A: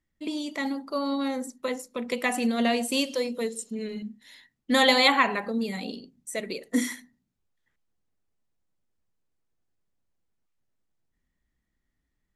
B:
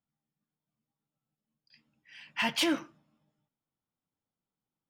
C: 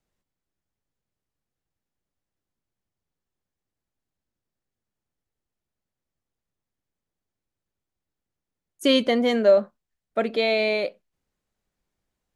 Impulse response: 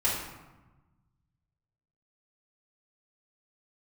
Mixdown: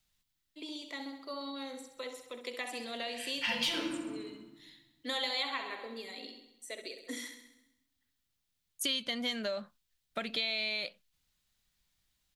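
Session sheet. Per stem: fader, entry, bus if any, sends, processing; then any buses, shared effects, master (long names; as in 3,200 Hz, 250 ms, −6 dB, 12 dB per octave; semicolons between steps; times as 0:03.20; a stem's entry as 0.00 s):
−13.0 dB, 0.35 s, no bus, send −23.5 dB, echo send −9.5 dB, Butterworth high-pass 270 Hz 36 dB per octave
−1.0 dB, 1.05 s, bus A, send −10 dB, no echo send, low-shelf EQ 170 Hz +10.5 dB
+2.0 dB, 0.00 s, bus A, no send, no echo send, high-shelf EQ 8,800 Hz +9.5 dB
bus A: 0.0 dB, parametric band 430 Hz −13.5 dB 1.9 octaves; downward compressor 3 to 1, threshold −30 dBFS, peak gain reduction 9.5 dB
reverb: on, RT60 1.1 s, pre-delay 3 ms
echo: repeating echo 66 ms, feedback 59%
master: parametric band 3,700 Hz +8.5 dB 1.1 octaves; downward compressor 2 to 1, threshold −36 dBFS, peak gain reduction 9.5 dB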